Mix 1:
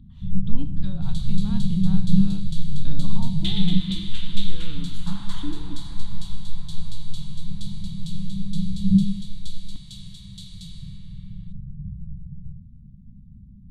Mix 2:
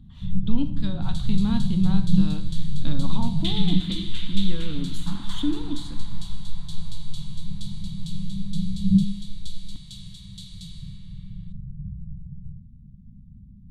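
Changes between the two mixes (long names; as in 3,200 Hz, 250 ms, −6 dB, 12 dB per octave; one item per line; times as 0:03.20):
speech +8.0 dB
first sound: send −7.5 dB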